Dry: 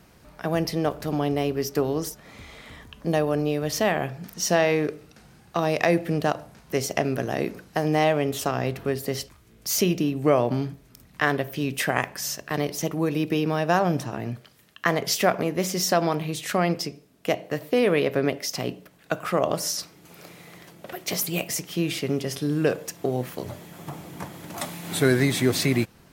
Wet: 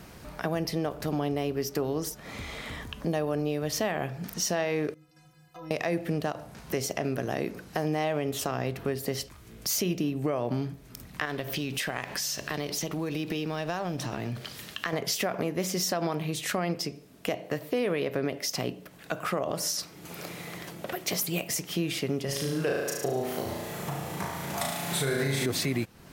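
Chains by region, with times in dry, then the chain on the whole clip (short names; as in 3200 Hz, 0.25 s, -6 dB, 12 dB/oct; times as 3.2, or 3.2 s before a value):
4.94–5.71 compressor, threshold -32 dBFS + metallic resonator 150 Hz, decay 0.49 s, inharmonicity 0.03
11.25–14.93 G.711 law mismatch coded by mu + bell 4000 Hz +6 dB 1.6 oct + compressor 2.5:1, threshold -30 dBFS
22.25–25.46 bell 280 Hz -8 dB 0.59 oct + flutter echo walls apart 6.2 m, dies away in 0.89 s
whole clip: limiter -14 dBFS; compressor 2:1, threshold -41 dBFS; gain +6.5 dB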